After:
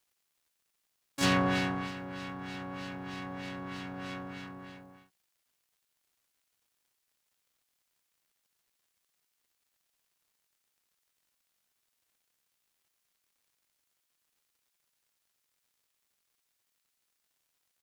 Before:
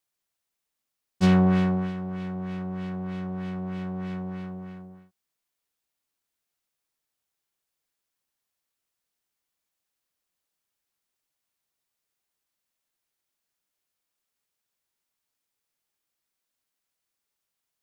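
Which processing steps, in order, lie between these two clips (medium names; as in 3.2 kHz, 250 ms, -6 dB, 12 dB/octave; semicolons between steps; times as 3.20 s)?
harmony voices -7 st -6 dB, +7 st -1 dB; tilt shelf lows -8.5 dB, about 650 Hz; crackle 160 per s -57 dBFS; trim -7 dB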